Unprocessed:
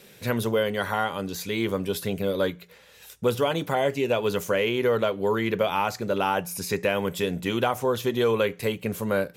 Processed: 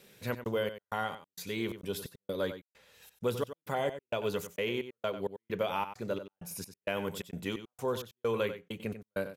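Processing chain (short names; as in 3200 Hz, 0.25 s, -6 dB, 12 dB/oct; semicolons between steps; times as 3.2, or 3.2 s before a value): step gate "xxx.xx..xx.." 131 bpm -60 dB; outdoor echo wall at 16 m, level -11 dB; gain -8 dB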